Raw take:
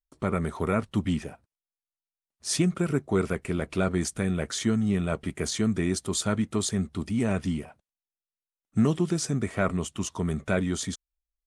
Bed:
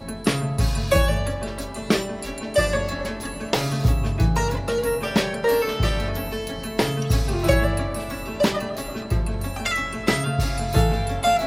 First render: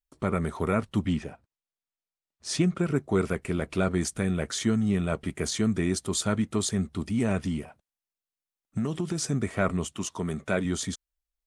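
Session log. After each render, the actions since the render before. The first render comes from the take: 1.06–2.96 s: distance through air 50 m; 7.37–9.21 s: compression, threshold -24 dBFS; 9.94–10.65 s: high-pass 170 Hz 6 dB/octave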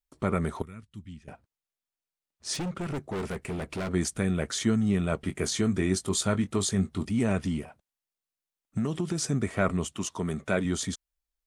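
0.62–1.28 s: amplifier tone stack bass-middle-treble 6-0-2; 2.54–3.89 s: hard clipper -29.5 dBFS; 5.24–7.05 s: doubling 21 ms -10 dB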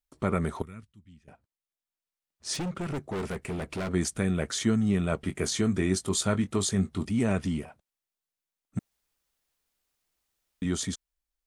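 0.92–2.55 s: fade in, from -13 dB; 8.79–10.62 s: room tone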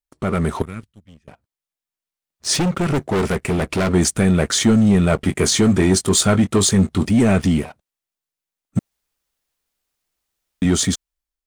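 waveshaping leveller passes 2; level rider gain up to 6 dB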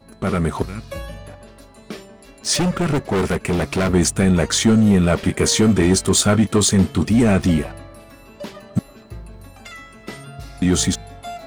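add bed -13 dB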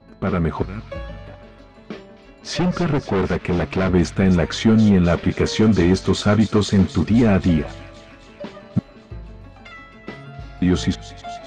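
distance through air 190 m; feedback echo behind a high-pass 263 ms, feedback 68%, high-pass 2.2 kHz, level -11.5 dB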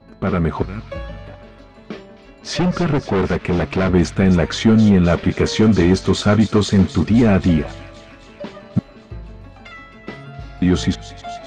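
trim +2 dB

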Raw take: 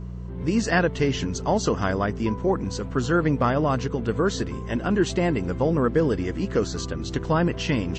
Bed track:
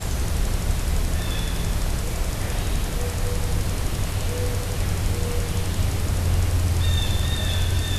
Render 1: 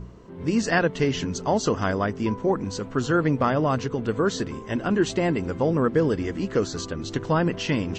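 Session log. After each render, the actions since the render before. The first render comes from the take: de-hum 60 Hz, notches 3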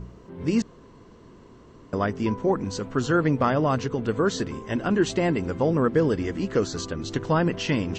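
0.62–1.93 s: room tone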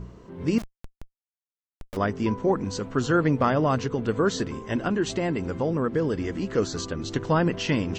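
0.58–1.97 s: Schmitt trigger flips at -39 dBFS; 4.88–6.58 s: compression 1.5:1, threshold -26 dBFS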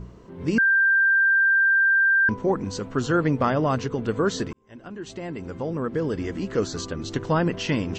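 0.58–2.29 s: bleep 1.58 kHz -15.5 dBFS; 4.53–6.18 s: fade in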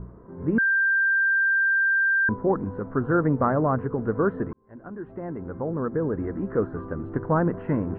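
steep low-pass 1.6 kHz 36 dB/octave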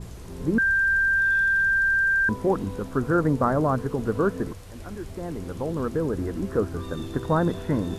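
add bed track -17.5 dB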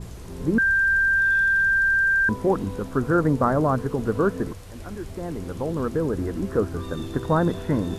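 trim +1.5 dB

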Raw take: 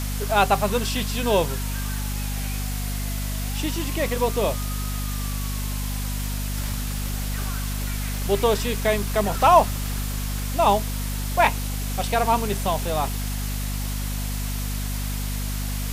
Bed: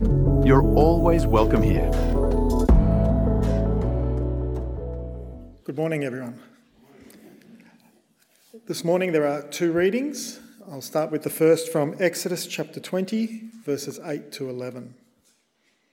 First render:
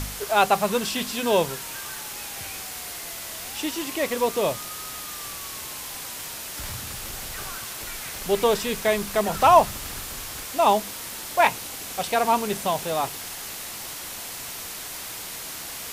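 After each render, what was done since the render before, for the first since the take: de-hum 50 Hz, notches 5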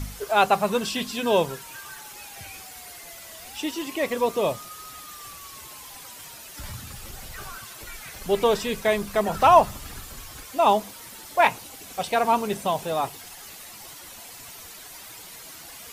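noise reduction 10 dB, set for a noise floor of -36 dBFS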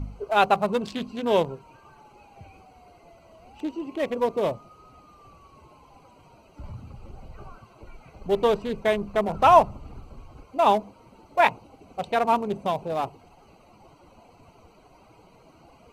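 local Wiener filter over 25 samples; treble shelf 9.3 kHz -11 dB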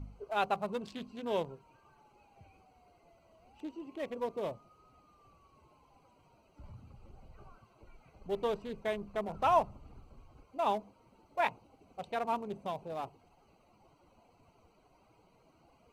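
trim -12 dB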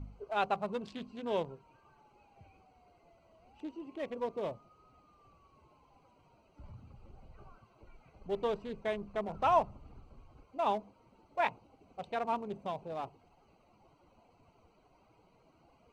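distance through air 52 m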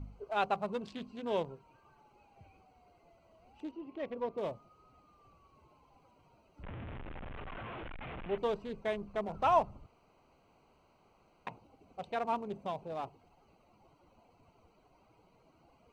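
3.71–4.38 s: distance through air 150 m; 6.63–8.38 s: one-bit delta coder 16 kbps, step -37.5 dBFS; 9.86–11.47 s: room tone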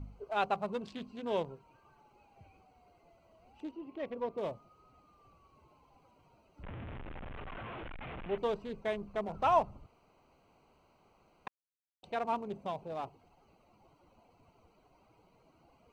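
11.48–12.03 s: mute

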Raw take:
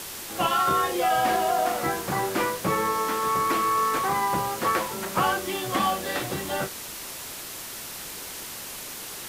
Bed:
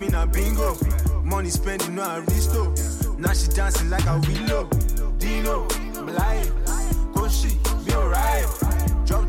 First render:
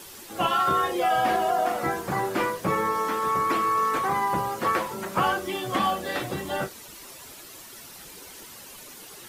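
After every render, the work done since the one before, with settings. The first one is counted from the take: noise reduction 10 dB, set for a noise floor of -38 dBFS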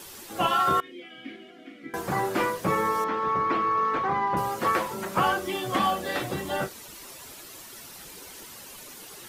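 0.80–1.94 s: vowel filter i; 3.04–4.37 s: distance through air 210 m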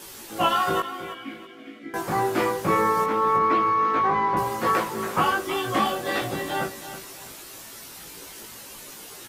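doubling 18 ms -2 dB; on a send: feedback delay 324 ms, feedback 30%, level -12 dB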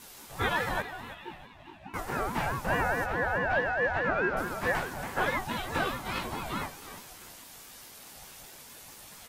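flange 0.59 Hz, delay 9.3 ms, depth 2.8 ms, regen +66%; ring modulator with a swept carrier 490 Hz, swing 30%, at 4.7 Hz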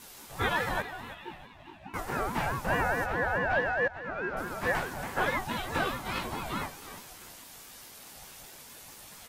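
3.88–4.72 s: fade in, from -16 dB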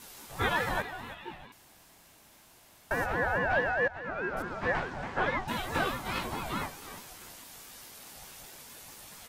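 1.52–2.91 s: room tone; 4.42–5.48 s: distance through air 140 m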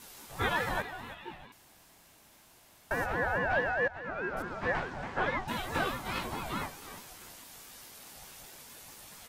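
trim -1.5 dB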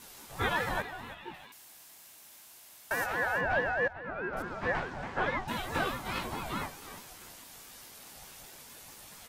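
1.34–3.41 s: tilt EQ +2.5 dB/octave; 3.93–4.33 s: distance through air 170 m

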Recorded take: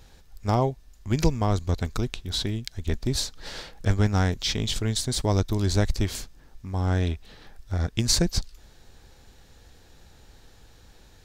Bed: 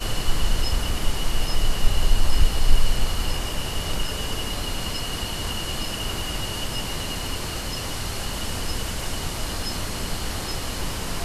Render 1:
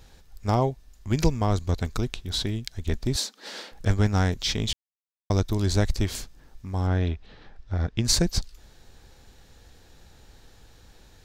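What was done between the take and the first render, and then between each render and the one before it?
3.16–3.72 s: steep high-pass 190 Hz 96 dB/octave; 4.73–5.30 s: mute; 6.87–8.05 s: distance through air 150 m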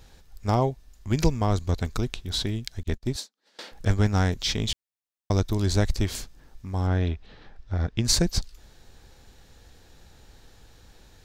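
2.83–3.59 s: upward expansion 2.5:1, over -41 dBFS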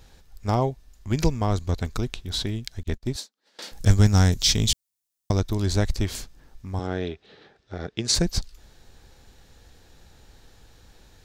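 3.62–5.31 s: tone controls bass +6 dB, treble +12 dB; 6.79–8.15 s: cabinet simulation 170–9600 Hz, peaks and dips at 240 Hz -4 dB, 410 Hz +7 dB, 1 kHz -5 dB, 3.7 kHz +3 dB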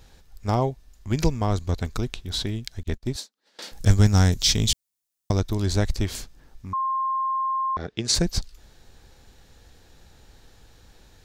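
6.73–7.77 s: bleep 1.06 kHz -22 dBFS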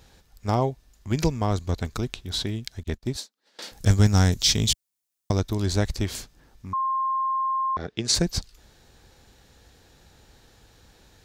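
high-pass 57 Hz 6 dB/octave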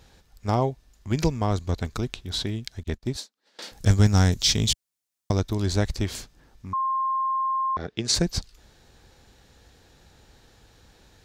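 treble shelf 10 kHz -5 dB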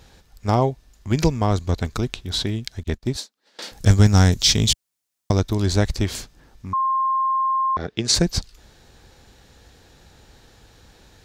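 trim +4.5 dB; peak limiter -2 dBFS, peak gain reduction 1 dB

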